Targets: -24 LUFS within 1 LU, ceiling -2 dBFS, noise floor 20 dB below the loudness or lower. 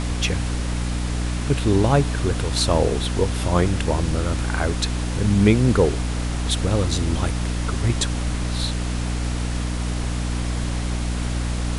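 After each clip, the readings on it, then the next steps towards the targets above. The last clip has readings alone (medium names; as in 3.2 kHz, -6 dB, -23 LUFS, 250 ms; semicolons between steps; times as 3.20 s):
hum 60 Hz; highest harmonic 300 Hz; hum level -22 dBFS; noise floor -25 dBFS; noise floor target -43 dBFS; loudness -22.5 LUFS; peak level -2.5 dBFS; loudness target -24.0 LUFS
-> de-hum 60 Hz, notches 5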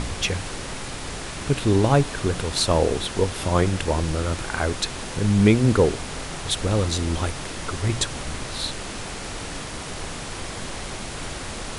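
hum not found; noise floor -33 dBFS; noise floor target -45 dBFS
-> noise print and reduce 12 dB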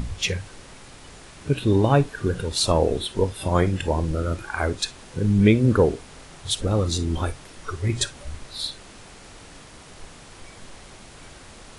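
noise floor -45 dBFS; loudness -23.0 LUFS; peak level -4.0 dBFS; loudness target -24.0 LUFS
-> trim -1 dB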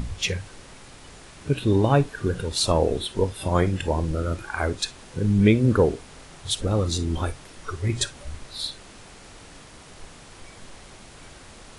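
loudness -24.0 LUFS; peak level -5.0 dBFS; noise floor -46 dBFS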